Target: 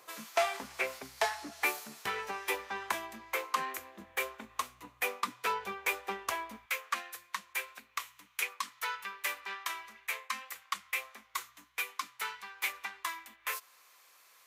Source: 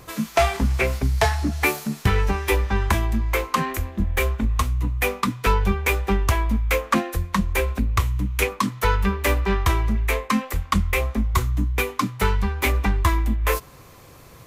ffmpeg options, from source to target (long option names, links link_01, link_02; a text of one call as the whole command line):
ffmpeg -i in.wav -af "asetnsamples=nb_out_samples=441:pad=0,asendcmd='6.66 highpass f 1300',highpass=560,volume=-9dB" out.wav